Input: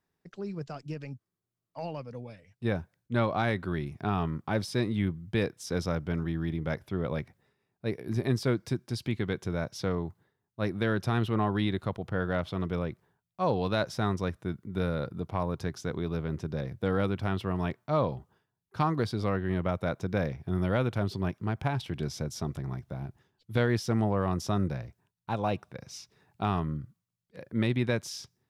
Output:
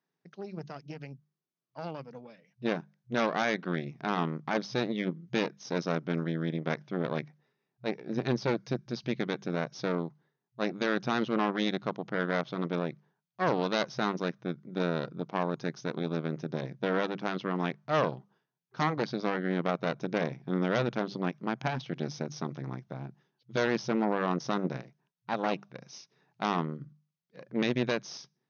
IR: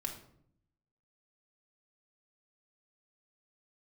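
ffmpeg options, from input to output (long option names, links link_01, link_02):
-af "bandreject=frequency=50:width_type=h:width=6,bandreject=frequency=100:width_type=h:width=6,bandreject=frequency=150:width_type=h:width=6,bandreject=frequency=200:width_type=h:width=6,aeval=exprs='0.178*(cos(1*acos(clip(val(0)/0.178,-1,1)))-cos(1*PI/2))+0.00501*(cos(2*acos(clip(val(0)/0.178,-1,1)))-cos(2*PI/2))+0.0794*(cos(4*acos(clip(val(0)/0.178,-1,1)))-cos(4*PI/2))':channel_layout=same,afftfilt=real='re*between(b*sr/4096,120,6600)':imag='im*between(b*sr/4096,120,6600)':win_size=4096:overlap=0.75,volume=-3.5dB"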